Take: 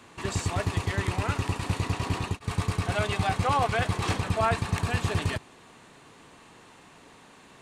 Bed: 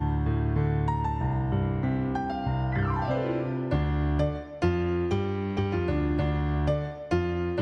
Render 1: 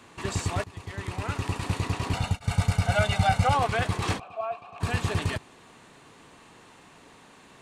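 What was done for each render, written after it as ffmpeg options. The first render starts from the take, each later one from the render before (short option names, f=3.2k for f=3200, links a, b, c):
-filter_complex "[0:a]asettb=1/sr,asplit=3[a][b][c];[a]atrim=end=2.134[d];[b]atrim=start=2.13:end=3.55,asetpts=PTS-STARTPTS,afade=t=in:d=0.004:c=qsin,afade=t=out:st=1.416:d=0.004:c=qsin,aecho=1:1:1.4:0.87,atrim=end_sample=62622[e];[c]atrim=start=3.546[f];[d][e]acrossfade=d=0.004:c1=hsin:c2=qsin[g];[g][f]acrossfade=d=0.004:c1=qsin:c2=hsin,asplit=3[h][i][j];[h]afade=t=out:st=4.18:d=0.02[k];[i]asplit=3[l][m][n];[l]bandpass=f=730:t=q:w=8,volume=0dB[o];[m]bandpass=f=1.09k:t=q:w=8,volume=-6dB[p];[n]bandpass=f=2.44k:t=q:w=8,volume=-9dB[q];[o][p][q]amix=inputs=3:normalize=0,afade=t=in:st=4.18:d=0.02,afade=t=out:st=4.8:d=0.02[r];[j]afade=t=in:st=4.8:d=0.02[s];[k][r][s]amix=inputs=3:normalize=0,asplit=2[t][u];[t]atrim=end=0.64,asetpts=PTS-STARTPTS,afade=t=out:st=0.636:d=0.004:c=hsin:silence=0.1[v];[u]atrim=start=0.64,asetpts=PTS-STARTPTS,afade=t=in:d=0.94:silence=0.1[w];[v][w]concat=n=2:v=0:a=1"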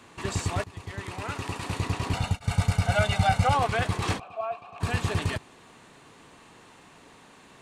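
-filter_complex "[0:a]asettb=1/sr,asplit=3[a][b][c];[a]atrim=end=0.994[d];[b]atrim=start=0.99:end=1.73,asetpts=PTS-STARTPTS,afade=t=in:d=0.004:c=qsin,afade=t=out:st=0.736:d=0.004:c=qsin,lowshelf=f=160:g=-8[e];[c]atrim=start=1.726[f];[d][e]acrossfade=d=0.004:c1=hsin:c2=qsin[g];[g][f]acrossfade=d=0.004:c1=qsin:c2=hsin"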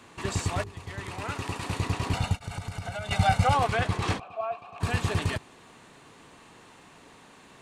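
-filter_complex "[0:a]asettb=1/sr,asplit=3[a][b][c];[a]atrim=end=0.494[d];[b]atrim=start=0.49:end=1.24,asetpts=PTS-STARTPTS,afade=t=in:d=0.004:c=qsin,afade=t=out:st=0.746:d=0.004:c=qsin,bandreject=f=50:t=h:w=6,bandreject=f=100:t=h:w=6,bandreject=f=150:t=h:w=6,bandreject=f=200:t=h:w=6,bandreject=f=250:t=h:w=6,bandreject=f=300:t=h:w=6,bandreject=f=350:t=h:w=6,bandreject=f=400:t=h:w=6,bandreject=f=450:t=h:w=6[e];[c]atrim=start=1.236[f];[d][e]acrossfade=d=0.004:c1=hsin:c2=qsin[g];[g][f]acrossfade=d=0.004:c1=qsin:c2=hsin,asettb=1/sr,asplit=3[h][i][j];[h]atrim=end=2.414[k];[i]atrim=start=2.41:end=3.11,asetpts=PTS-STARTPTS,afade=t=in:d=0.004:c=qsin,afade=t=out:st=0.696:d=0.004:c=qsin,acompressor=threshold=-30dB:ratio=16:attack=3.2:release=140:knee=1:detection=peak[l];[j]atrim=start=3.106[m];[k][l]acrossfade=d=0.004:c1=hsin:c2=qsin[n];[n][m]acrossfade=d=0.004:c1=qsin:c2=hsin,asettb=1/sr,asplit=3[o][p][q];[o]atrim=end=3.754[r];[p]atrim=start=3.75:end=4.59,asetpts=PTS-STARTPTS,afade=t=in:d=0.004:c=qsin,afade=t=out:st=0.836:d=0.004:c=qsin,highshelf=f=8.6k:g=-8[s];[q]atrim=start=4.586[t];[r][s]acrossfade=d=0.004:c1=hsin:c2=qsin[u];[u][t]acrossfade=d=0.004:c1=qsin:c2=hsin"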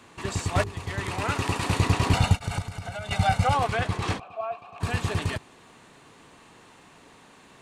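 -filter_complex "[0:a]asplit=3[a][b][c];[a]atrim=end=0.552[d];[b]atrim=start=0.548:end=2.622,asetpts=PTS-STARTPTS,volume=6.5dB[e];[c]atrim=start=2.618[f];[d][e]acrossfade=d=0.004:c1=hsin:c2=hsin[g];[g][f]acrossfade=d=0.004:c1=hsin:c2=hsin"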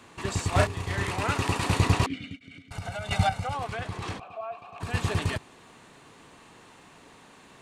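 -filter_complex "[0:a]asettb=1/sr,asplit=3[a][b][c];[a]atrim=end=0.494[d];[b]atrim=start=0.49:end=1.11,asetpts=PTS-STARTPTS,afade=t=in:d=0.004:c=qsin,afade=t=out:st=0.616:d=0.004:c=qsin,asplit=2[e][f];[f]adelay=33,volume=-3dB[g];[e][g]amix=inputs=2:normalize=0,atrim=end_sample=27342[h];[c]atrim=start=1.106[i];[d][h]acrossfade=d=0.004:c1=hsin:c2=qsin[j];[j][i]acrossfade=d=0.004:c1=qsin:c2=hsin,asettb=1/sr,asplit=3[k][l][m];[k]atrim=end=2.064[n];[l]atrim=start=2.06:end=2.71,asetpts=PTS-STARTPTS,afade=t=in:d=0.004:c=qsin,afade=t=out:st=0.646:d=0.004:c=qsin,asplit=3[o][p][q];[o]bandpass=f=270:t=q:w=8,volume=0dB[r];[p]bandpass=f=2.29k:t=q:w=8,volume=-6dB[s];[q]bandpass=f=3.01k:t=q:w=8,volume=-9dB[t];[r][s][t]amix=inputs=3:normalize=0[u];[m]atrim=start=2.706[v];[n][u]acrossfade=d=0.004:c1=hsin:c2=qsin[w];[w][v]acrossfade=d=0.004:c1=qsin:c2=hsin,asplit=3[x][y][z];[x]afade=t=out:st=3.28:d=0.02[aa];[y]acompressor=threshold=-35dB:ratio=2:attack=3.2:release=140:knee=1:detection=peak,afade=t=in:st=3.28:d=0.02,afade=t=out:st=4.93:d=0.02[ab];[z]afade=t=in:st=4.93:d=0.02[ac];[aa][ab][ac]amix=inputs=3:normalize=0"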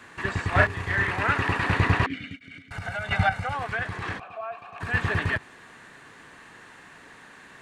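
-filter_complex "[0:a]acrossover=split=3600[a][b];[b]acompressor=threshold=-52dB:ratio=4:attack=1:release=60[c];[a][c]amix=inputs=2:normalize=0,equalizer=f=1.7k:t=o:w=0.63:g=12.5"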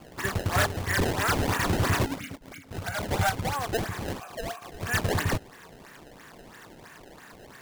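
-af "acrusher=samples=22:mix=1:aa=0.000001:lfo=1:lforange=35.2:lforate=3,asoftclip=type=hard:threshold=-19.5dB"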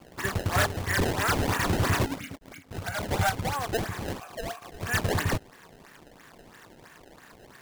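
-af "aeval=exprs='sgn(val(0))*max(abs(val(0))-0.0015,0)':c=same"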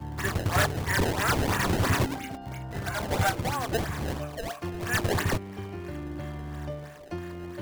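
-filter_complex "[1:a]volume=-10dB[a];[0:a][a]amix=inputs=2:normalize=0"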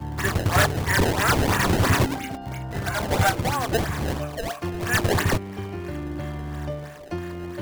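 -af "volume=5dB"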